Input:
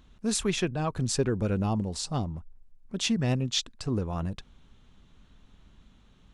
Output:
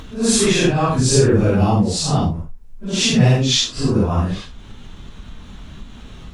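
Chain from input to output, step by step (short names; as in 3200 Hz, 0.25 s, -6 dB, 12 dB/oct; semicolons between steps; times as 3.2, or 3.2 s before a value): phase scrambler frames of 0.2 s; in parallel at 0 dB: upward compressor, threshold -32 dBFS; on the sum: gain +7 dB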